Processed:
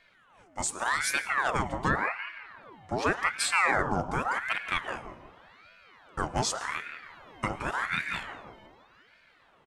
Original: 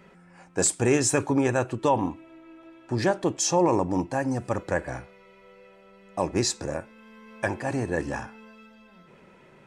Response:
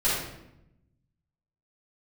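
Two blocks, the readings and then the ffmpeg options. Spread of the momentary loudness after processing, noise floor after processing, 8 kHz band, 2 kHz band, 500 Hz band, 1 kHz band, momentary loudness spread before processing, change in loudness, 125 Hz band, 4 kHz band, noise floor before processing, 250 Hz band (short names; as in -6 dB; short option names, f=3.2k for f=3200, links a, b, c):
17 LU, -62 dBFS, -7.5 dB, +5.5 dB, -10.0 dB, 0.0 dB, 13 LU, -3.5 dB, -8.0 dB, -0.5 dB, -54 dBFS, -11.0 dB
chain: -filter_complex "[0:a]dynaudnorm=f=360:g=7:m=5dB,asplit=2[a][b];[b]adelay=171,lowpass=f=1k:p=1,volume=-9dB,asplit=2[c][d];[d]adelay=171,lowpass=f=1k:p=1,volume=0.46,asplit=2[e][f];[f]adelay=171,lowpass=f=1k:p=1,volume=0.46,asplit=2[g][h];[h]adelay=171,lowpass=f=1k:p=1,volume=0.46,asplit=2[i][j];[j]adelay=171,lowpass=f=1k:p=1,volume=0.46[k];[a][c][e][g][i][k]amix=inputs=6:normalize=0,asplit=2[l][m];[1:a]atrim=start_sample=2205,adelay=97[n];[m][n]afir=irnorm=-1:irlink=0,volume=-27.5dB[o];[l][o]amix=inputs=2:normalize=0,aeval=exprs='val(0)*sin(2*PI*1200*n/s+1200*0.65/0.87*sin(2*PI*0.87*n/s))':c=same,volume=-6dB"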